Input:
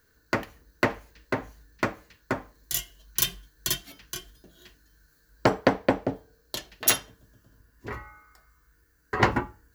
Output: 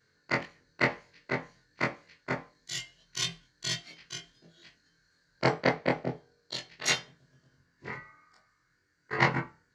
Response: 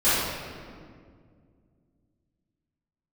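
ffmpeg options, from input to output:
-af "afftfilt=real='re':imag='-im':win_size=2048:overlap=0.75,highpass=110,equalizer=frequency=150:width_type=q:width=4:gain=10,equalizer=frequency=270:width_type=q:width=4:gain=-4,equalizer=frequency=2100:width_type=q:width=4:gain=8,equalizer=frequency=4400:width_type=q:width=4:gain=6,lowpass=frequency=7000:width=0.5412,lowpass=frequency=7000:width=1.3066"

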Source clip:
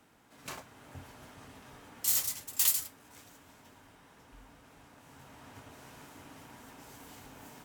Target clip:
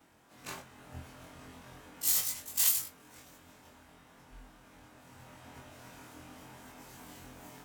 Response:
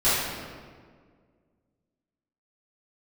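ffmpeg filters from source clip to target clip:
-af "afftfilt=real='re':imag='-im':win_size=2048:overlap=0.75,volume=4.5dB"

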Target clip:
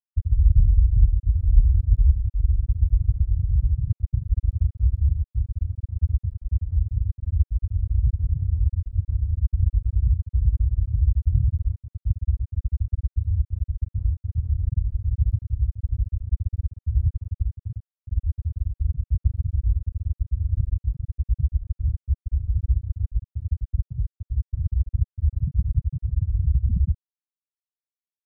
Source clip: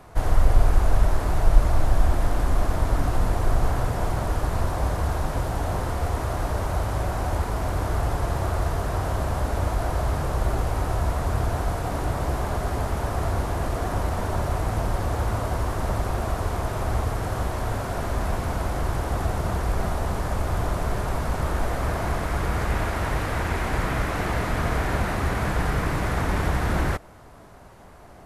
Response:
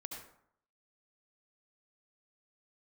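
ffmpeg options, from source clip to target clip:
-af "highpass=frequency=43:width=0.5412,highpass=frequency=43:width=1.3066,afftfilt=real='re*gte(hypot(re,im),0.501)':imag='im*gte(hypot(re,im),0.501)':win_size=1024:overlap=0.75,volume=7.5dB"

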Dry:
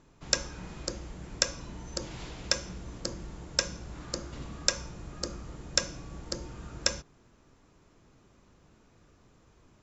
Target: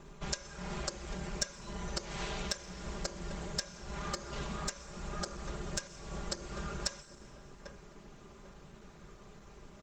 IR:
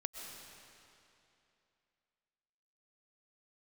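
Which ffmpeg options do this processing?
-filter_complex "[0:a]asplit=2[link_01][link_02];[link_02]adelay=794,lowpass=frequency=950:poles=1,volume=-23dB,asplit=2[link_03][link_04];[link_04]adelay=794,lowpass=frequency=950:poles=1,volume=0.36[link_05];[link_01][link_03][link_05]amix=inputs=3:normalize=0,acrossover=split=450[link_06][link_07];[link_06]acompressor=threshold=-48dB:ratio=2.5[link_08];[link_08][link_07]amix=inputs=2:normalize=0,equalizer=frequency=240:width_type=o:width=0.23:gain=-7.5,acompressor=threshold=-41dB:ratio=8,bandreject=frequency=5000:width=23,aecho=1:1:5:0.98,asplit=2[link_09][link_10];[1:a]atrim=start_sample=2205[link_11];[link_10][link_11]afir=irnorm=-1:irlink=0,volume=-10dB[link_12];[link_09][link_12]amix=inputs=2:normalize=0,volume=5dB" -ar 48000 -c:a libopus -b:a 20k

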